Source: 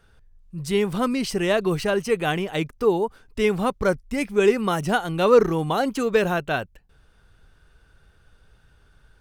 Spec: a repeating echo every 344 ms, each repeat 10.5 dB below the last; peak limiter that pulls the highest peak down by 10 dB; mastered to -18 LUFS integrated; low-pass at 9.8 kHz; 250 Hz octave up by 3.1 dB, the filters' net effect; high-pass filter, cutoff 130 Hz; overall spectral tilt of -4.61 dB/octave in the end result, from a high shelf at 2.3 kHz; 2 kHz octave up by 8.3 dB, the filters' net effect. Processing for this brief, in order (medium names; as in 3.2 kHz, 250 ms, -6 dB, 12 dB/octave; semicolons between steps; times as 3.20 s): high-pass 130 Hz; low-pass 9.8 kHz; peaking EQ 250 Hz +4.5 dB; peaking EQ 2 kHz +7.5 dB; treble shelf 2.3 kHz +7 dB; peak limiter -12 dBFS; feedback delay 344 ms, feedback 30%, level -10.5 dB; trim +4 dB